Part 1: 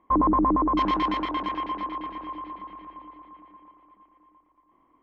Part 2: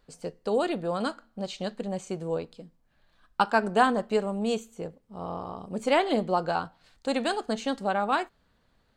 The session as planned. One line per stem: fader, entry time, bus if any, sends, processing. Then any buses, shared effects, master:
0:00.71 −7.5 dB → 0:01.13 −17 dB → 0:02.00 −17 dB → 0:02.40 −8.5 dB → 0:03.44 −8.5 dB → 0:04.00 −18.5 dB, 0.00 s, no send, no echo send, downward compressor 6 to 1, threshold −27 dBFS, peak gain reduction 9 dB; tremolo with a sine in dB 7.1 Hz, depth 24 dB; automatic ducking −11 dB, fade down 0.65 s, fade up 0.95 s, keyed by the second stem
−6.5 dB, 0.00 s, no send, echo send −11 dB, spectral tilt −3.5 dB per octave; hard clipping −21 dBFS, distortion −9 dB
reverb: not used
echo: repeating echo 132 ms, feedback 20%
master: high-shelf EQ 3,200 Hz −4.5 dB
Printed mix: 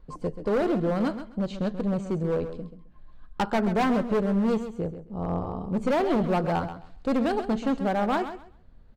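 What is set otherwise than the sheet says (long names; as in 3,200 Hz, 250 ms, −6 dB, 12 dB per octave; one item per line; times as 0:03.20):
stem 2 −6.5 dB → +0.5 dB
master: missing high-shelf EQ 3,200 Hz −4.5 dB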